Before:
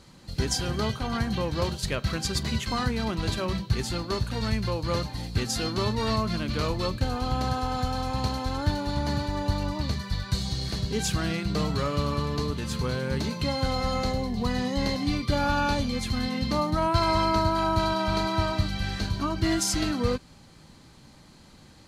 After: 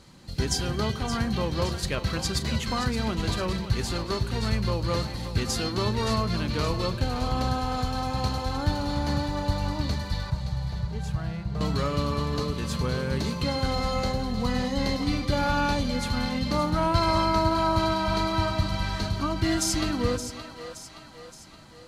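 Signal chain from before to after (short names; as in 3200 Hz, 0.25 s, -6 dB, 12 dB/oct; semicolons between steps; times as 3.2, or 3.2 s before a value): 10.3–11.61 EQ curve 160 Hz 0 dB, 270 Hz -18 dB, 710 Hz -4 dB, 4400 Hz -18 dB; split-band echo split 440 Hz, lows 0.12 s, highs 0.571 s, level -10.5 dB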